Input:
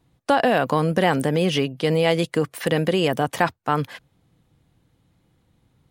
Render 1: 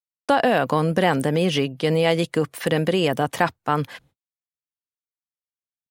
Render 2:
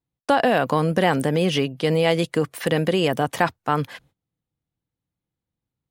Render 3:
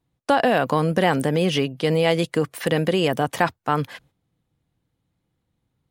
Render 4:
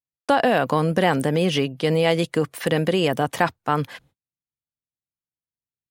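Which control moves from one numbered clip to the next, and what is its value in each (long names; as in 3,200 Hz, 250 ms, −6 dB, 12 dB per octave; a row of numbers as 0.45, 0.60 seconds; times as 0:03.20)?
noise gate, range: −56, −23, −11, −42 decibels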